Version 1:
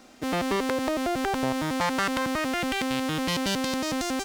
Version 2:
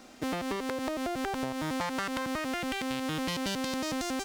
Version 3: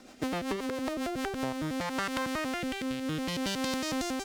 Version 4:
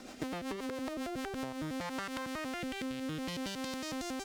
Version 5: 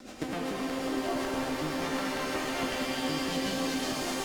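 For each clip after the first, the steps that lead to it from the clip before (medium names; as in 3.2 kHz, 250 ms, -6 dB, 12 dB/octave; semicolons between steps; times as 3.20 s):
compression, threshold -30 dBFS, peak gain reduction 8.5 dB
rotary cabinet horn 7.5 Hz, later 0.65 Hz, at 0.86 s; trim +2 dB
compression 10:1, threshold -39 dBFS, peak gain reduction 12 dB; trim +3.5 dB
vibrato 1.8 Hz 12 cents; rotary cabinet horn 8 Hz; pitch-shifted reverb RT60 3.6 s, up +7 st, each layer -2 dB, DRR -2 dB; trim +3.5 dB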